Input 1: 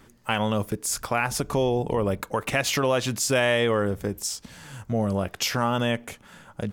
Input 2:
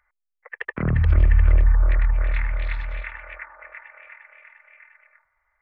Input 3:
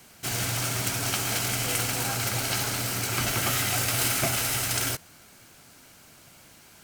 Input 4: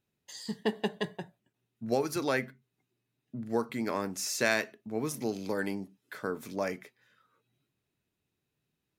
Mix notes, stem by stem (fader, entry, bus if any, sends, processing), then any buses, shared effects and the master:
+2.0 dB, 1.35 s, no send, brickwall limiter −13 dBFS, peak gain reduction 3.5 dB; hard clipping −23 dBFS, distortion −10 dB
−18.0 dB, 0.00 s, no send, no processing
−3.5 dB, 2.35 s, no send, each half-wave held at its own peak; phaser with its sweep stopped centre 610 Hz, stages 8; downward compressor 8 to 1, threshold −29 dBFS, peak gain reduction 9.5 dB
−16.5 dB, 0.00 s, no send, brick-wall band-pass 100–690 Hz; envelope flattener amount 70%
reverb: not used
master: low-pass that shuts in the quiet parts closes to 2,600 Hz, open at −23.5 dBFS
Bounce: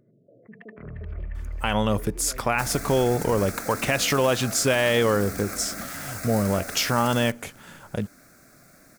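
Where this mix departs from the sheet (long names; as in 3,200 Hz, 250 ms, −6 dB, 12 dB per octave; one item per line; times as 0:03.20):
stem 1: missing hard clipping −23 dBFS, distortion −10 dB
master: missing low-pass that shuts in the quiet parts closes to 2,600 Hz, open at −23.5 dBFS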